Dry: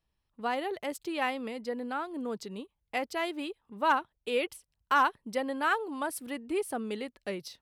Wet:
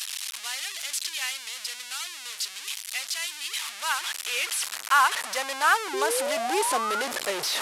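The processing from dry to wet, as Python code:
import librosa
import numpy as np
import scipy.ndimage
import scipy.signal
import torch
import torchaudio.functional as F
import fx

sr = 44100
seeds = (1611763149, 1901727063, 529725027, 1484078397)

y = fx.delta_mod(x, sr, bps=64000, step_db=-28.0)
y = fx.filter_sweep_highpass(y, sr, from_hz=2800.0, to_hz=500.0, start_s=3.3, end_s=6.64, q=0.83)
y = fx.spec_paint(y, sr, seeds[0], shape='rise', start_s=5.93, length_s=1.09, low_hz=370.0, high_hz=1500.0, level_db=-36.0)
y = y * 10.0 ** (7.0 / 20.0)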